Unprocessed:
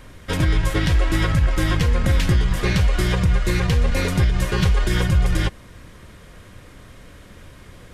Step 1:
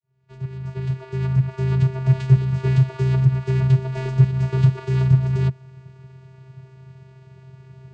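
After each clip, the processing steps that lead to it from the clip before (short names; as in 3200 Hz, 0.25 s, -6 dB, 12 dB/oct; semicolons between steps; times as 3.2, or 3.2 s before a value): opening faded in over 2.11 s; vocoder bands 8, square 131 Hz; gain +5.5 dB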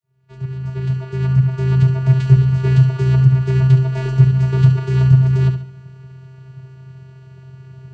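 flutter echo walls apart 11.9 m, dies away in 0.5 s; gain +3 dB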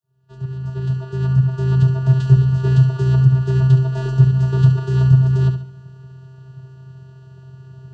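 Butterworth band-stop 2200 Hz, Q 2.3; gain -1 dB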